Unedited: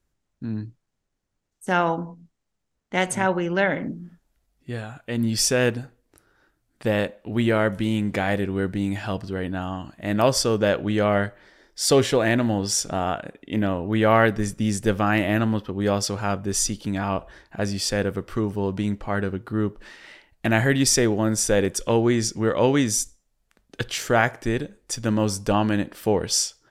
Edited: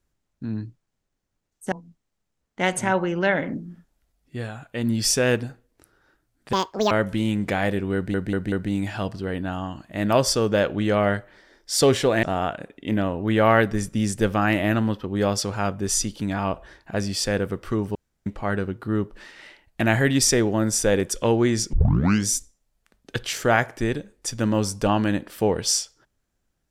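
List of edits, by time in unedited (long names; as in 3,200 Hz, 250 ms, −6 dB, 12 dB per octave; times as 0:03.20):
0:01.72–0:02.06: remove
0:06.87–0:07.57: play speed 184%
0:08.61: stutter 0.19 s, 4 plays
0:12.32–0:12.88: remove
0:18.60–0:18.91: fill with room tone
0:22.38: tape start 0.54 s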